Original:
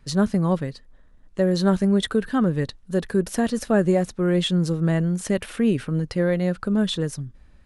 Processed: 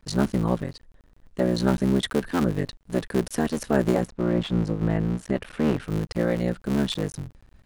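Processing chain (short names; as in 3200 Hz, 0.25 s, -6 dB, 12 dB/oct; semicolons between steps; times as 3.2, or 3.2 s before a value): cycle switcher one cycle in 3, muted; 4.06–5.82 LPF 1400 Hz -> 2900 Hz 6 dB/oct; gain -1 dB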